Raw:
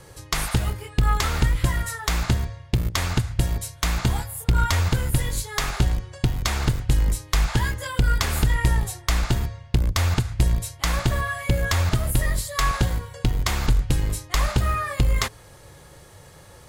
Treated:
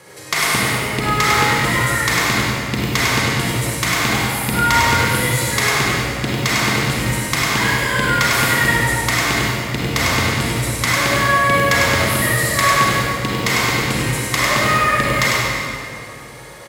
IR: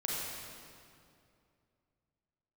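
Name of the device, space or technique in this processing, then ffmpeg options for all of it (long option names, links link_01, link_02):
PA in a hall: -filter_complex "[0:a]highpass=200,equalizer=frequency=2100:width_type=o:width=0.48:gain=7,aecho=1:1:100:0.596[link_01];[1:a]atrim=start_sample=2205[link_02];[link_01][link_02]afir=irnorm=-1:irlink=0,volume=4.5dB"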